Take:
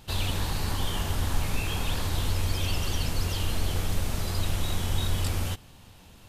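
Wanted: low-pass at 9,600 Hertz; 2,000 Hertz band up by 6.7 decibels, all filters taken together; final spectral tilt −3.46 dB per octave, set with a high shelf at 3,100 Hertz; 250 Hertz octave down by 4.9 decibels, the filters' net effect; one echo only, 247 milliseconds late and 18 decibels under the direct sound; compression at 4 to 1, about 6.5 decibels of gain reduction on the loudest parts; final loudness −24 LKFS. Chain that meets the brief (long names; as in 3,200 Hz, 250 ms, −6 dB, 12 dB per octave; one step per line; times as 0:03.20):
low-pass filter 9,600 Hz
parametric band 250 Hz −7.5 dB
parametric band 2,000 Hz +6 dB
high-shelf EQ 3,100 Hz +7 dB
downward compressor 4 to 1, threshold −28 dBFS
single-tap delay 247 ms −18 dB
level +9 dB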